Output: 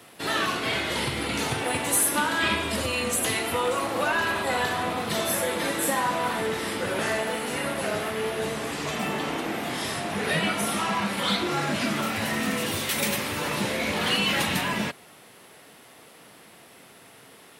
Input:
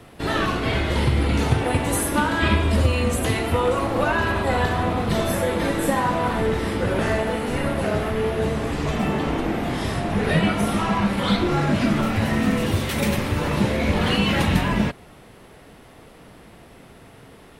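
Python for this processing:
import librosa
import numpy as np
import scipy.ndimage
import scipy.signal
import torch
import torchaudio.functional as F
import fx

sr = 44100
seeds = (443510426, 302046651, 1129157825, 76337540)

p1 = scipy.signal.sosfilt(scipy.signal.butter(2, 110.0, 'highpass', fs=sr, output='sos'), x)
p2 = fx.tilt_eq(p1, sr, slope=2.5)
p3 = np.clip(10.0 ** (19.5 / 20.0) * p2, -1.0, 1.0) / 10.0 ** (19.5 / 20.0)
p4 = p2 + F.gain(torch.from_numpy(p3), -10.0).numpy()
y = F.gain(torch.from_numpy(p4), -5.0).numpy()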